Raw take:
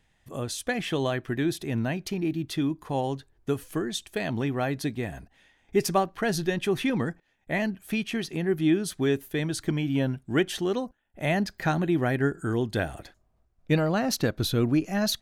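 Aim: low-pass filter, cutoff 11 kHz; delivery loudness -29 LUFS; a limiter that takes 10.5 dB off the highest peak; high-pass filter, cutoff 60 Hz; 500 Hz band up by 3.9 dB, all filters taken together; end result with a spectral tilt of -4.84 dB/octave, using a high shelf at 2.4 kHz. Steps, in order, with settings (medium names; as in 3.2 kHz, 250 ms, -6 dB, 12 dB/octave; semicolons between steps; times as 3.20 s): high-pass 60 Hz; low-pass 11 kHz; peaking EQ 500 Hz +5 dB; treble shelf 2.4 kHz +5.5 dB; trim -1 dB; peak limiter -18.5 dBFS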